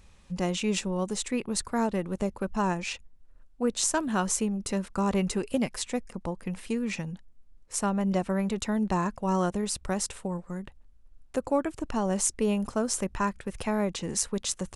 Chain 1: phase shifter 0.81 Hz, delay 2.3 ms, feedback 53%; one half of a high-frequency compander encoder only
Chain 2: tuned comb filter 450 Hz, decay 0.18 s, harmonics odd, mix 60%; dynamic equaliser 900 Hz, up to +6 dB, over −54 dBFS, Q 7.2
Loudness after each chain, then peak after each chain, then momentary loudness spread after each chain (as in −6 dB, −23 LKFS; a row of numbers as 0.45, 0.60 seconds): −28.5, −36.5 LKFS; −9.0, −17.5 dBFS; 10, 9 LU